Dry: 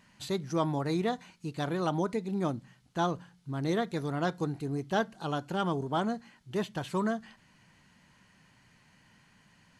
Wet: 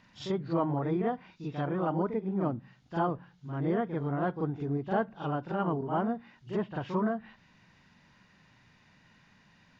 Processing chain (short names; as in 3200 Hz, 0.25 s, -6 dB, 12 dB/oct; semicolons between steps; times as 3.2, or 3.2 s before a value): nonlinear frequency compression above 2600 Hz 1.5:1; treble ducked by the level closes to 1500 Hz, closed at -29.5 dBFS; reverse echo 42 ms -7.5 dB